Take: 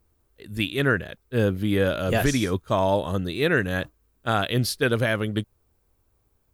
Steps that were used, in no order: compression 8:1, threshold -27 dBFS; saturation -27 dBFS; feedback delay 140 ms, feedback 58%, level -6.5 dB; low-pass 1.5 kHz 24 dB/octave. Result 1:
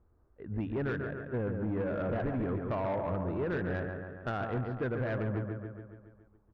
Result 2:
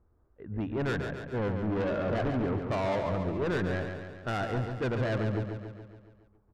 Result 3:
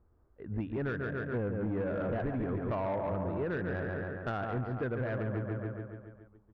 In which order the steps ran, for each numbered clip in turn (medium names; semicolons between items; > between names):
low-pass > compression > feedback delay > saturation; low-pass > saturation > compression > feedback delay; feedback delay > compression > low-pass > saturation